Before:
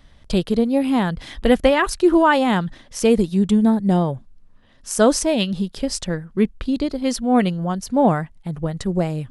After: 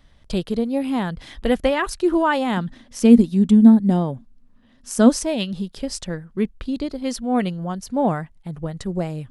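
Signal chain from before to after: 2.57–5.1 bell 240 Hz +14.5 dB 0.35 oct; gain -4 dB

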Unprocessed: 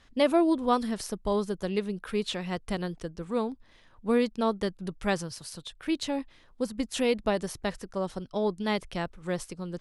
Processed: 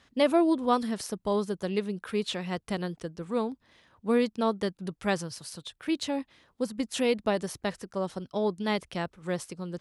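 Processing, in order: HPF 84 Hz 12 dB/oct

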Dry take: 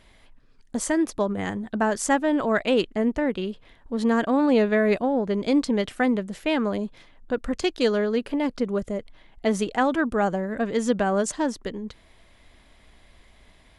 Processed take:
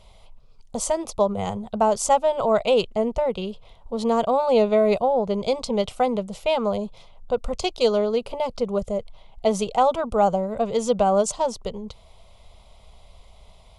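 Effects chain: high shelf 8100 Hz -7.5 dB; fixed phaser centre 710 Hz, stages 4; gain +6.5 dB

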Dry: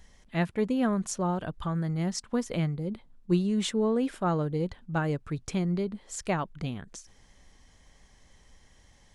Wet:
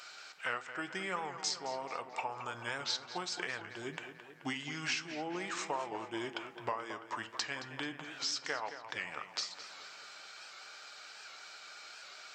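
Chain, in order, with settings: HPF 1300 Hz 12 dB/oct; compressor 6:1, threshold -50 dBFS, peak gain reduction 19 dB; tape echo 0.161 s, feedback 70%, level -10 dB, low-pass 5000 Hz; on a send at -9 dB: reverb RT60 0.35 s, pre-delay 3 ms; on the sum: speed mistake 45 rpm record played at 33 rpm; record warp 78 rpm, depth 100 cents; gain +14 dB

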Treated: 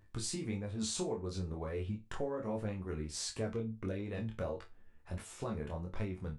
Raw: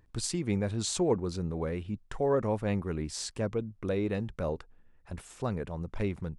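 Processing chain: chorus 1.5 Hz, delay 19.5 ms, depth 7 ms; compressor, threshold -38 dBFS, peak gain reduction 13 dB; resonator bank D2 major, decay 0.23 s; gain +13 dB

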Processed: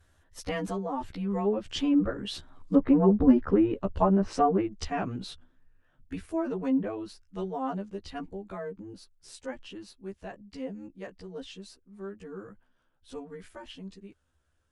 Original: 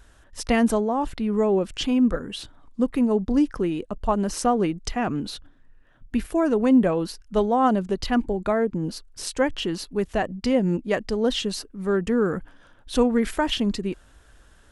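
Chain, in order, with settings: short-time reversal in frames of 30 ms; Doppler pass-by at 3.29, 9 m/s, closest 6.1 m; treble ducked by the level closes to 1400 Hz, closed at -25.5 dBFS; gain +6 dB

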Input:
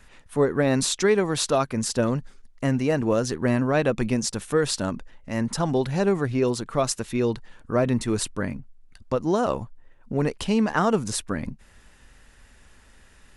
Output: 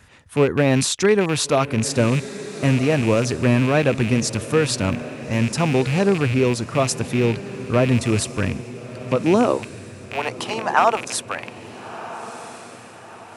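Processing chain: rattling part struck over -31 dBFS, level -21 dBFS; high-pass sweep 86 Hz -> 770 Hz, 8.85–9.95; diffused feedback echo 1.353 s, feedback 45%, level -14 dB; gain +3 dB

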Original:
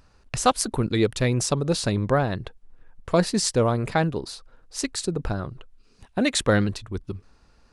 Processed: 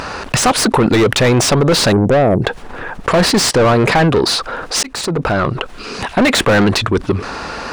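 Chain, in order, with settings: 1.92–2.42 inverse Chebyshev band-stop 1100–4100 Hz, stop band 40 dB; overdrive pedal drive 33 dB, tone 1900 Hz, clips at -3.5 dBFS; 4.83–6.28 fade in equal-power; fast leveller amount 50%

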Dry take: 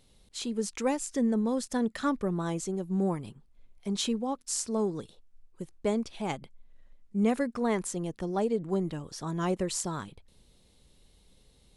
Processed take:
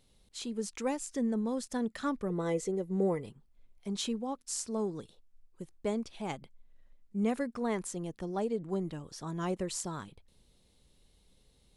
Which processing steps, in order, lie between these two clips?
2.3–3.29 small resonant body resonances 470/2000 Hz, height 17 dB; gain -4.5 dB

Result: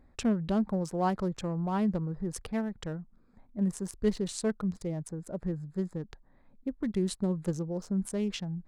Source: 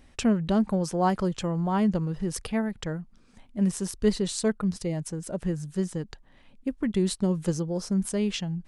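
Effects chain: Wiener smoothing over 15 samples; gain -4.5 dB

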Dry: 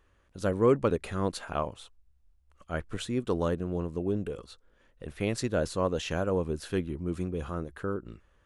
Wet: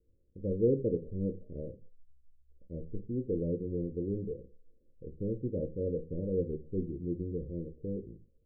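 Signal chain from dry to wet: steep low-pass 540 Hz 96 dB/oct; reverb RT60 0.30 s, pre-delay 6 ms, DRR 6.5 dB; gain -4.5 dB

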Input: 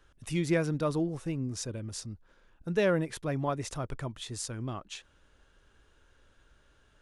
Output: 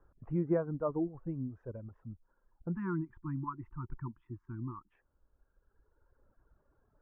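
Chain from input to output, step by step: inverse Chebyshev low-pass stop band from 4000 Hz, stop band 60 dB; reverb removal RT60 2 s; spectral delete 2.75–4.92, 370–870 Hz; gain -1.5 dB

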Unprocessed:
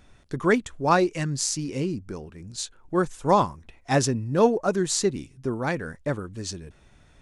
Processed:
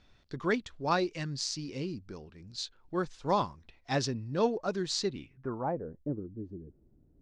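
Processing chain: low-pass sweep 4500 Hz -> 330 Hz, 5.07–5.99; gain -9 dB

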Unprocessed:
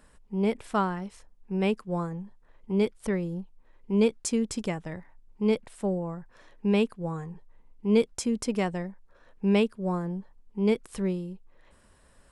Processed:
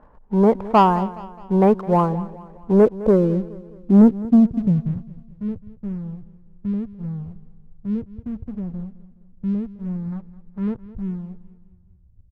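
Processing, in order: low-pass sweep 920 Hz -> 100 Hz, 2.43–5.32; sample leveller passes 1; in parallel at -11 dB: soft clip -24.5 dBFS, distortion -7 dB; 10.12–10.84 on the sum: bell 1200 Hz +10.5 dB 2.5 oct; feedback echo 0.21 s, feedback 46%, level -17.5 dB; gain +5.5 dB

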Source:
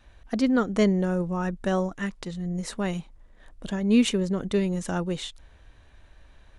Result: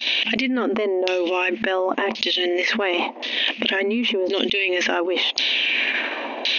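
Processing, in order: expander -49 dBFS; LFO low-pass saw down 0.93 Hz 750–4400 Hz; FFT band-pass 220–6600 Hz; resonant high shelf 1900 Hz +11 dB, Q 3; fast leveller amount 100%; gain -6 dB

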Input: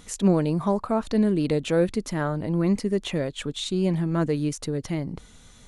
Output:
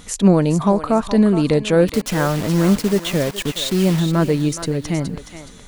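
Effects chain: 1.88–4 requantised 6-bit, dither none; bell 360 Hz -2 dB 0.45 oct; thinning echo 0.42 s, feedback 35%, high-pass 710 Hz, level -8.5 dB; gain +7.5 dB

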